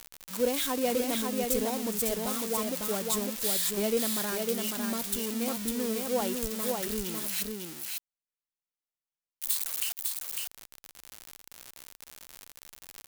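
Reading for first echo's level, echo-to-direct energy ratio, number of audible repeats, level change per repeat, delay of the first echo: −3.5 dB, −3.5 dB, 1, repeats not evenly spaced, 552 ms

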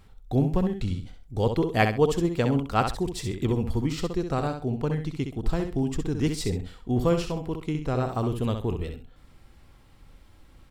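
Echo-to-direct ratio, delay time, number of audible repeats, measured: −7.0 dB, 65 ms, 2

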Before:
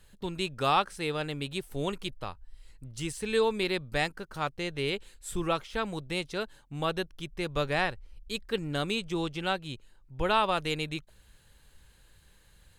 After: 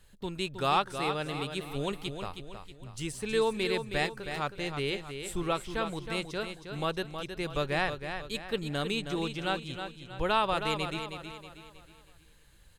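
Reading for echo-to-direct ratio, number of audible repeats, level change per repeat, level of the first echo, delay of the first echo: −7.0 dB, 4, −7.5 dB, −8.0 dB, 318 ms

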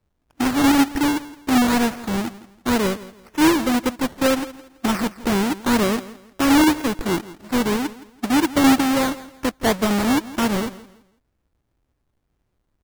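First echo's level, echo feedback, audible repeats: −17.5 dB, 29%, 2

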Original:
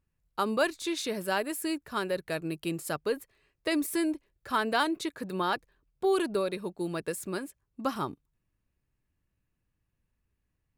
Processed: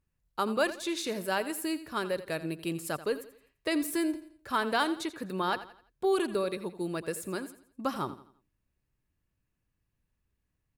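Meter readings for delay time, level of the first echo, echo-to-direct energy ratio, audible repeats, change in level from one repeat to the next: 85 ms, −14.5 dB, −14.0 dB, 3, −8.5 dB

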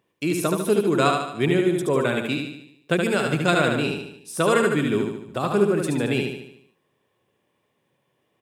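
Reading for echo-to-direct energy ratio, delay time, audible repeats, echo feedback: −2.5 dB, 74 ms, 6, 51%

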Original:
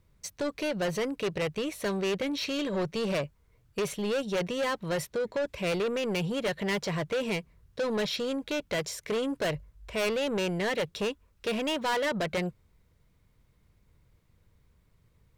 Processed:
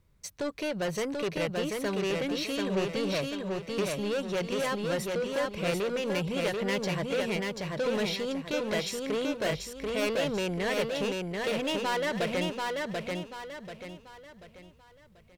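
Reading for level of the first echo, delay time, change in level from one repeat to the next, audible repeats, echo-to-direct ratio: −3.0 dB, 737 ms, −8.5 dB, 4, −2.5 dB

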